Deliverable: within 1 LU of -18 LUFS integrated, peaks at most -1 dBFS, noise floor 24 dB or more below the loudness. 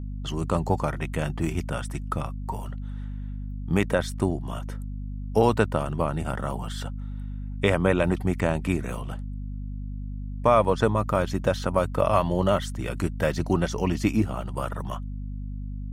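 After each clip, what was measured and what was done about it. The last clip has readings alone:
hum 50 Hz; harmonics up to 250 Hz; hum level -30 dBFS; loudness -27.0 LUFS; peak -6.5 dBFS; loudness target -18.0 LUFS
-> notches 50/100/150/200/250 Hz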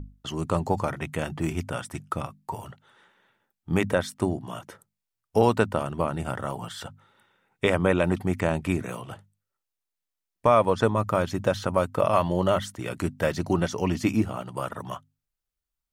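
hum none; loudness -26.5 LUFS; peak -7.0 dBFS; loudness target -18.0 LUFS
-> gain +8.5 dB; limiter -1 dBFS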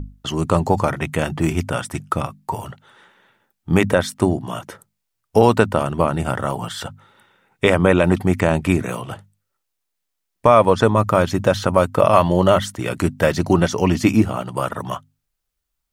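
loudness -18.5 LUFS; peak -1.0 dBFS; noise floor -77 dBFS

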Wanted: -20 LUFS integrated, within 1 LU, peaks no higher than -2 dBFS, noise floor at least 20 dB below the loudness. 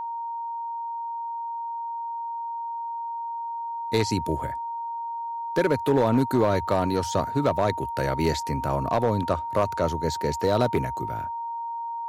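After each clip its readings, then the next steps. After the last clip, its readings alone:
clipped 0.6%; flat tops at -14.0 dBFS; steady tone 930 Hz; tone level -29 dBFS; loudness -27.0 LUFS; peak -14.0 dBFS; loudness target -20.0 LUFS
-> clip repair -14 dBFS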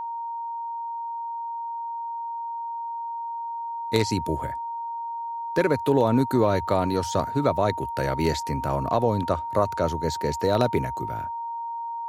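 clipped 0.0%; steady tone 930 Hz; tone level -29 dBFS
-> notch 930 Hz, Q 30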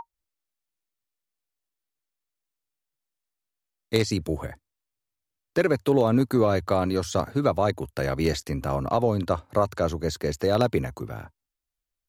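steady tone none; loudness -25.0 LUFS; peak -4.5 dBFS; loudness target -20.0 LUFS
-> gain +5 dB; limiter -2 dBFS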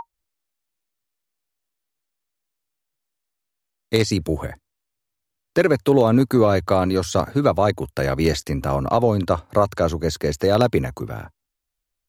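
loudness -20.0 LUFS; peak -2.0 dBFS; noise floor -80 dBFS

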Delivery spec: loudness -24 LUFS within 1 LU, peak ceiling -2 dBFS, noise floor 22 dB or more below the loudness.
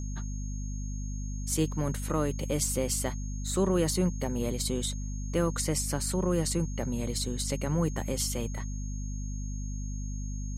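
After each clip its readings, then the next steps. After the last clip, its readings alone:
hum 50 Hz; harmonics up to 250 Hz; hum level -32 dBFS; steady tone 6500 Hz; tone level -47 dBFS; loudness -31.5 LUFS; peak -15.0 dBFS; loudness target -24.0 LUFS
-> de-hum 50 Hz, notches 5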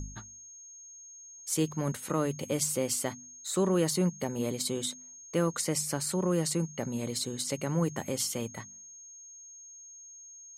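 hum none; steady tone 6500 Hz; tone level -47 dBFS
-> notch 6500 Hz, Q 30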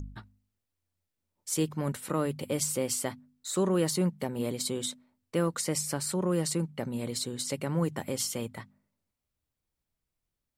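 steady tone none; loudness -31.0 LUFS; peak -16.0 dBFS; loudness target -24.0 LUFS
-> gain +7 dB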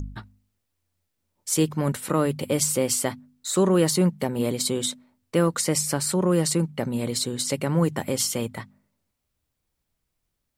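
loudness -24.0 LUFS; peak -9.0 dBFS; noise floor -79 dBFS

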